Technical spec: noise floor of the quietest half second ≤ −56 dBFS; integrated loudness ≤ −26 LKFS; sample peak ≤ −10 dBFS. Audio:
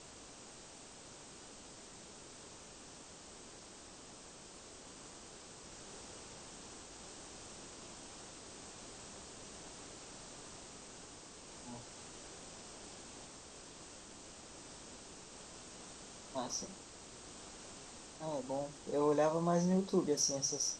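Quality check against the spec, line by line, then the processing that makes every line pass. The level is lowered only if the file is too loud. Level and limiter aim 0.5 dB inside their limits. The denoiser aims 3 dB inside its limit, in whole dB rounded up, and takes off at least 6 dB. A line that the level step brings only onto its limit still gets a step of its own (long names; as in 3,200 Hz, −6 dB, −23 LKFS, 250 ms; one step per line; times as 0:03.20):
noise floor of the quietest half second −54 dBFS: out of spec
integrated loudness −43.0 LKFS: in spec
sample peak −20.0 dBFS: in spec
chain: broadband denoise 6 dB, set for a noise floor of −54 dBFS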